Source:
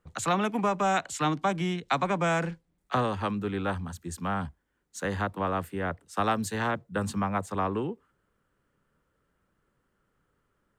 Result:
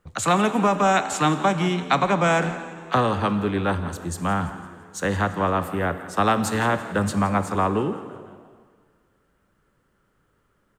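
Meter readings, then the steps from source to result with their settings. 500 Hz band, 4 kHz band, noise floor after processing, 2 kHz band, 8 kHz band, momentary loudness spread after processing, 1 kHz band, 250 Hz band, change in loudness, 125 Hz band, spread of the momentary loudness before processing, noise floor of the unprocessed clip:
+7.0 dB, +7.0 dB, −67 dBFS, +7.0 dB, +7.0 dB, 9 LU, +7.0 dB, +7.0 dB, +7.0 dB, +7.0 dB, 9 LU, −76 dBFS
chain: on a send: echo with shifted repeats 169 ms, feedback 49%, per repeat +77 Hz, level −17 dB
on the sum: dense smooth reverb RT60 1.9 s, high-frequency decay 0.9×, DRR 11 dB
level +6.5 dB

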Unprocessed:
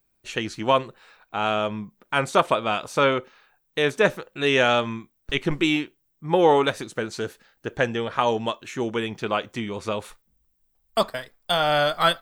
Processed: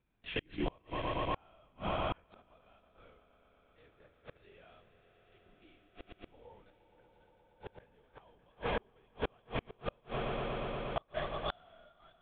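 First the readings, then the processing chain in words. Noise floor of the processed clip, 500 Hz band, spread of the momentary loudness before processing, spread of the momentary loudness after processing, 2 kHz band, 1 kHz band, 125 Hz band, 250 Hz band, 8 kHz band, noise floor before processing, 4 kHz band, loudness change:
−70 dBFS, −18.5 dB, 13 LU, 20 LU, −20.0 dB, −17.5 dB, −12.5 dB, −17.5 dB, below −40 dB, −70 dBFS, −19.5 dB, −15.5 dB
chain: mains-hum notches 60/120/180/240/300/360 Hz
linear-prediction vocoder at 8 kHz whisper
high-shelf EQ 2,800 Hz −2.5 dB
echo that builds up and dies away 118 ms, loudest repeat 5, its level −14 dB
harmonic and percussive parts rebalanced percussive −9 dB
gate with flip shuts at −22 dBFS, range −37 dB

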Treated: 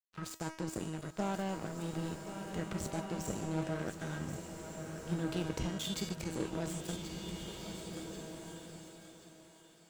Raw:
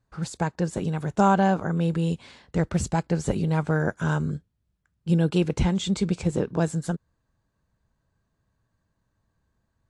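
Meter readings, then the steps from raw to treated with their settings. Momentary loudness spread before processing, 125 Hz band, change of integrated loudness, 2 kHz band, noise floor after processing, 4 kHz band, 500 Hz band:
10 LU, −15.0 dB, −14.5 dB, −12.0 dB, −60 dBFS, −5.5 dB, −12.5 dB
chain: dynamic equaliser 1,100 Hz, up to −7 dB, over −38 dBFS, Q 0.86
in parallel at −0.5 dB: compressor whose output falls as the input rises −33 dBFS, ratio −1
on the sum: tuned comb filter 320 Hz, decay 1 s, mix 90%
dead-zone distortion −45.5 dBFS
on a send: feedback echo with a high-pass in the loop 1,081 ms, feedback 37%, high-pass 530 Hz, level −10 dB
on the sum: slow-attack reverb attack 1,790 ms, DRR 5 dB
level +6.5 dB

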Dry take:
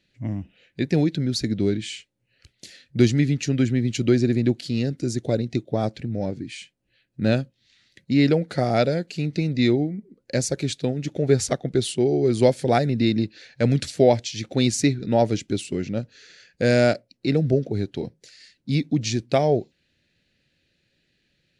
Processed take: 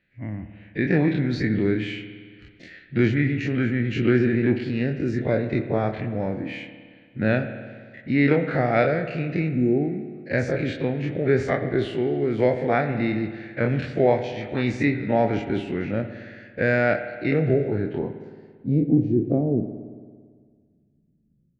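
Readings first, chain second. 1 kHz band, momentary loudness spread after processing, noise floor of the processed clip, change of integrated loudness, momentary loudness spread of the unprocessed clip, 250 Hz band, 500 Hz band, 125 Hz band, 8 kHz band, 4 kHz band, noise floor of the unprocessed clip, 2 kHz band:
0.0 dB, 14 LU, −62 dBFS, −1.0 dB, 11 LU, −0.5 dB, −0.5 dB, −1.5 dB, below −20 dB, −9.0 dB, −71 dBFS, +5.0 dB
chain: every bin's largest magnitude spread in time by 60 ms
low-pass filter sweep 1,900 Hz → 210 Hz, 0:17.52–0:19.72
automatic gain control gain up to 5.5 dB
time-frequency box erased 0:09.49–0:09.82, 820–6,500 Hz
spring reverb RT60 1.8 s, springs 56 ms, chirp 30 ms, DRR 9 dB
level −6.5 dB

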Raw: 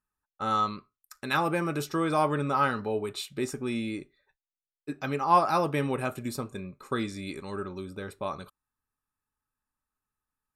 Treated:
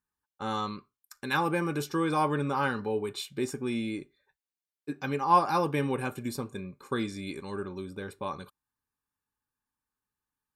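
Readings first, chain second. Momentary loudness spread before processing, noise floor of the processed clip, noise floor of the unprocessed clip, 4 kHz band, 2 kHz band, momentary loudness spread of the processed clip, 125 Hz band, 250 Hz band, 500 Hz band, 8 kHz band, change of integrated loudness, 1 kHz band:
14 LU, below −85 dBFS, below −85 dBFS, −1.0 dB, −0.5 dB, 13 LU, −0.5 dB, 0.0 dB, −1.5 dB, −1.5 dB, −1.5 dB, −1.5 dB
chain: notch comb filter 650 Hz

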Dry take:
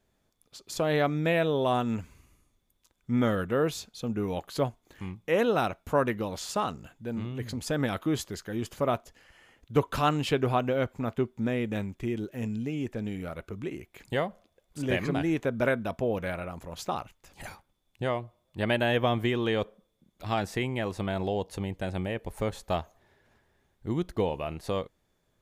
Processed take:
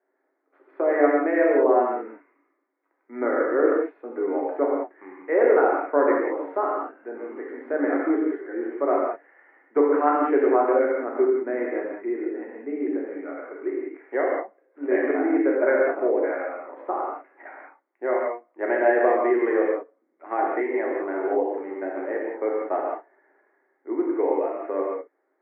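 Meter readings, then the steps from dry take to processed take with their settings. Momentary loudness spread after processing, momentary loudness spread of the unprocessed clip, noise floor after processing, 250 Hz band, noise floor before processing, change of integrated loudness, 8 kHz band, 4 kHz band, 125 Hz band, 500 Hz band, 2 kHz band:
14 LU, 12 LU, −73 dBFS, +4.5 dB, −74 dBFS, +6.0 dB, below −35 dB, below −25 dB, below −30 dB, +8.5 dB, +4.0 dB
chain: Chebyshev band-pass filter 280–2,100 Hz, order 5
dynamic equaliser 400 Hz, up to +5 dB, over −39 dBFS, Q 1
reverb whose tail is shaped and stops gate 220 ms flat, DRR −3.5 dB

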